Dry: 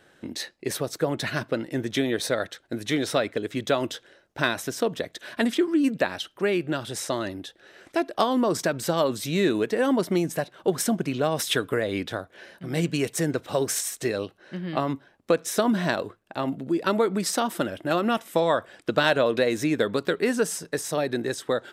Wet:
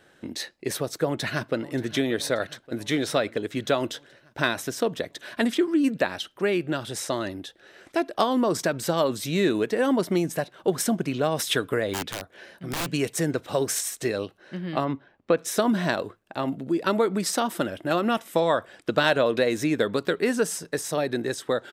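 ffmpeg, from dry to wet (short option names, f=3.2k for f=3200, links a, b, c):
-filter_complex "[0:a]asplit=2[a][b];[b]afade=t=in:st=1.04:d=0.01,afade=t=out:st=1.7:d=0.01,aecho=0:1:580|1160|1740|2320|2900|3480|4060|4640:0.133352|0.0933465|0.0653426|0.0457398|0.0320178|0.0224125|0.0156887|0.0109821[c];[a][c]amix=inputs=2:normalize=0,asplit=3[d][e][f];[d]afade=t=out:st=11.93:d=0.02[g];[e]aeval=exprs='(mod(14.1*val(0)+1,2)-1)/14.1':c=same,afade=t=in:st=11.93:d=0.02,afade=t=out:st=12.85:d=0.02[h];[f]afade=t=in:st=12.85:d=0.02[i];[g][h][i]amix=inputs=3:normalize=0,asplit=3[j][k][l];[j]afade=t=out:st=14.84:d=0.02[m];[k]lowpass=3.4k,afade=t=in:st=14.84:d=0.02,afade=t=out:st=15.37:d=0.02[n];[l]afade=t=in:st=15.37:d=0.02[o];[m][n][o]amix=inputs=3:normalize=0"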